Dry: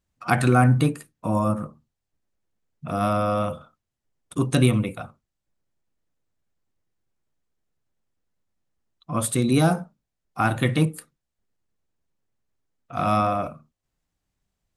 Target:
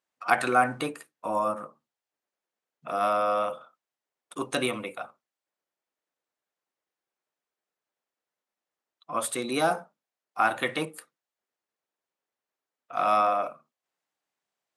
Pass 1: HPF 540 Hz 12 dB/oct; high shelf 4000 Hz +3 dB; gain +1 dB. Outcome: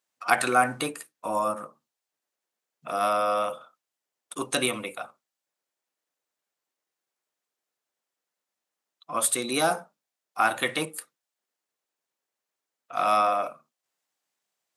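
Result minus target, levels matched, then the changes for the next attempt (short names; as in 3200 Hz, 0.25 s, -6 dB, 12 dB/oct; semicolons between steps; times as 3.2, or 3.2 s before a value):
8000 Hz band +7.5 dB
change: high shelf 4000 Hz -7 dB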